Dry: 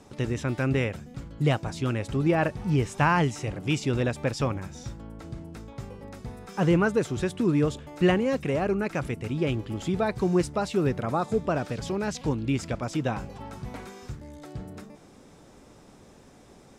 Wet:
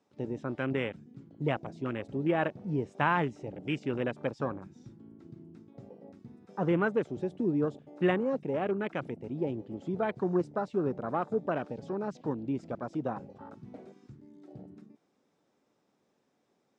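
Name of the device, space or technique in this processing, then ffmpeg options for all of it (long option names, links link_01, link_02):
over-cleaned archive recording: -af "highpass=190,lowpass=6300,afwtdn=0.0178,volume=-4dB"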